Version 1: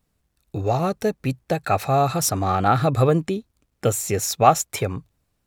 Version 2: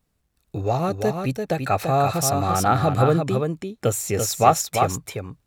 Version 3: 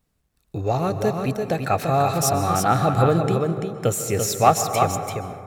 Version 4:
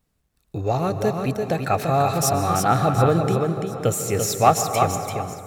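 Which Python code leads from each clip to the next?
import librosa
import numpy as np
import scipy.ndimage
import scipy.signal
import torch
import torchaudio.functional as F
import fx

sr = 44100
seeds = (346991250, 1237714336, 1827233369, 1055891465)

y1 = x + 10.0 ** (-5.5 / 20.0) * np.pad(x, (int(339 * sr / 1000.0), 0))[:len(x)]
y1 = y1 * librosa.db_to_amplitude(-1.0)
y2 = fx.rev_plate(y1, sr, seeds[0], rt60_s=2.2, hf_ratio=0.3, predelay_ms=115, drr_db=9.5)
y3 = fx.echo_feedback(y2, sr, ms=725, feedback_pct=39, wet_db=-17)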